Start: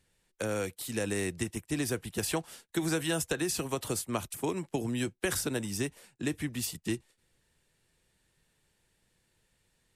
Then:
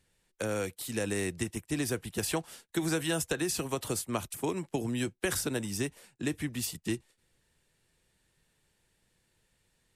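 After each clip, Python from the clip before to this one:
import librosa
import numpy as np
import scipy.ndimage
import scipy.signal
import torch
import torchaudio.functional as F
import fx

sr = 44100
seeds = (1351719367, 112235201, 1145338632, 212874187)

y = x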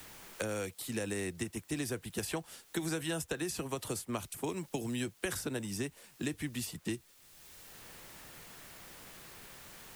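y = fx.dmg_noise_colour(x, sr, seeds[0], colour='white', level_db=-64.0)
y = fx.band_squash(y, sr, depth_pct=70)
y = y * librosa.db_to_amplitude(-4.5)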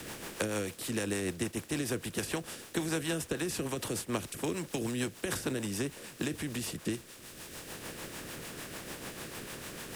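y = fx.bin_compress(x, sr, power=0.6)
y = fx.rotary(y, sr, hz=6.7)
y = y * librosa.db_to_amplitude(1.5)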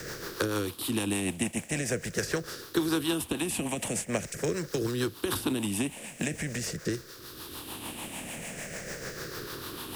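y = fx.spec_ripple(x, sr, per_octave=0.56, drift_hz=-0.44, depth_db=11)
y = y * librosa.db_to_amplitude(2.5)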